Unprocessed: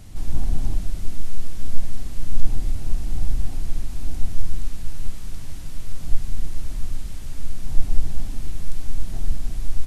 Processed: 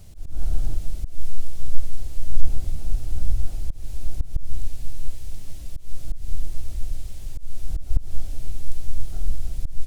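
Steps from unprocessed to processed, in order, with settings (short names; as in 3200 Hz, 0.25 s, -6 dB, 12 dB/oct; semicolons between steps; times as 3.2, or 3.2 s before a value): fixed phaser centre 480 Hz, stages 4; harmoniser +12 st -6 dB; auto swell 0.177 s; gain -2.5 dB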